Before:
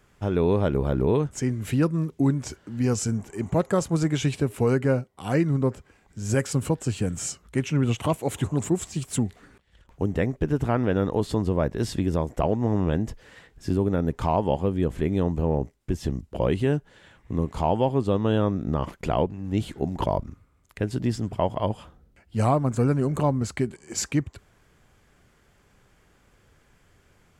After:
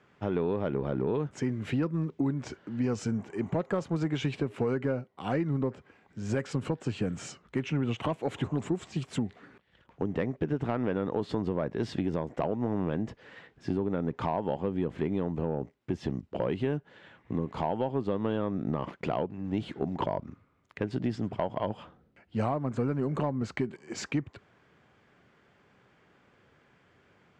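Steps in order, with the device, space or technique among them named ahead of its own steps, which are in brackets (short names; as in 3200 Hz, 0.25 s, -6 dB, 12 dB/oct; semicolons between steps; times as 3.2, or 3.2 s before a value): AM radio (BPF 140–3400 Hz; compressor, threshold -24 dBFS, peak gain reduction 8.5 dB; soft clip -16.5 dBFS, distortion -22 dB)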